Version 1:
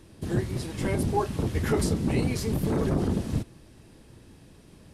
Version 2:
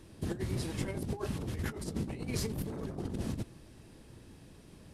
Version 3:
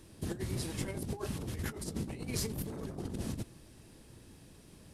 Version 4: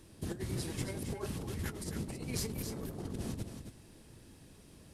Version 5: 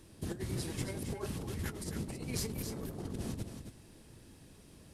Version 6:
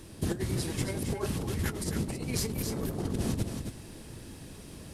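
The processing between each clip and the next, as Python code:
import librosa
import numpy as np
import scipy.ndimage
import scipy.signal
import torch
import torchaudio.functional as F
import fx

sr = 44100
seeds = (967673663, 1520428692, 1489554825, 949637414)

y1 = fx.over_compress(x, sr, threshold_db=-29.0, ratio=-0.5)
y1 = F.gain(torch.from_numpy(y1), -6.0).numpy()
y2 = fx.high_shelf(y1, sr, hz=5000.0, db=7.0)
y2 = F.gain(torch.from_numpy(y2), -2.0).numpy()
y3 = y2 + 10.0 ** (-7.5 / 20.0) * np.pad(y2, (int(271 * sr / 1000.0), 0))[:len(y2)]
y3 = F.gain(torch.from_numpy(y3), -1.5).numpy()
y4 = y3
y5 = fx.rider(y4, sr, range_db=10, speed_s=0.5)
y5 = F.gain(torch.from_numpy(y5), 7.0).numpy()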